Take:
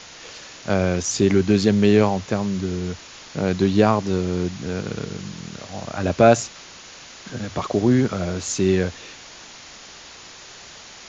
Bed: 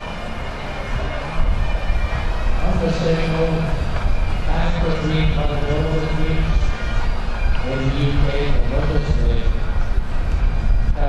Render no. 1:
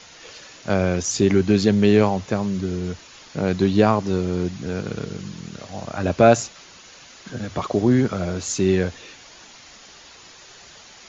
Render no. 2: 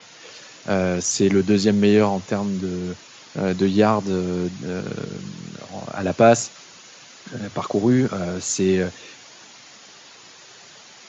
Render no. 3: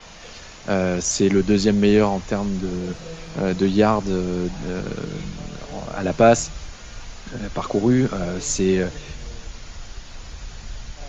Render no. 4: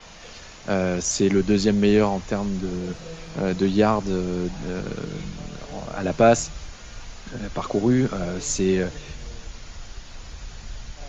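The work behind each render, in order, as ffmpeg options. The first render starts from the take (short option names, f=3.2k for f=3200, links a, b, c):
-af "afftdn=nr=6:nf=-42"
-af "highpass=f=110:w=0.5412,highpass=f=110:w=1.3066,adynamicequalizer=threshold=0.00891:dfrequency=6300:dqfactor=0.7:tfrequency=6300:tqfactor=0.7:attack=5:release=100:ratio=0.375:range=2.5:mode=boostabove:tftype=highshelf"
-filter_complex "[1:a]volume=-18dB[a];[0:a][a]amix=inputs=2:normalize=0"
-af "volume=-2dB"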